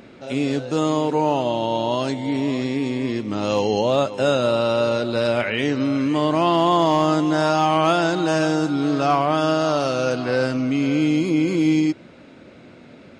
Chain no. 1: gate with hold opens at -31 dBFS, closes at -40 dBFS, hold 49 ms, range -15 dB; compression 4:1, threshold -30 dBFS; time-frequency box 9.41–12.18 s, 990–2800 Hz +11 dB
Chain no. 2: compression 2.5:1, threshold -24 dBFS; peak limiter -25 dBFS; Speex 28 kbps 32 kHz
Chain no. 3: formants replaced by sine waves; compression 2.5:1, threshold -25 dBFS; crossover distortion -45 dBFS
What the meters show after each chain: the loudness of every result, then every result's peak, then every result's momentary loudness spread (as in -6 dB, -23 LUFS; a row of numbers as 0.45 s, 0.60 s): -30.5 LUFS, -33.5 LUFS, -27.0 LUFS; -14.5 dBFS, -21.5 dBFS, -16.0 dBFS; 5 LU, 4 LU, 5 LU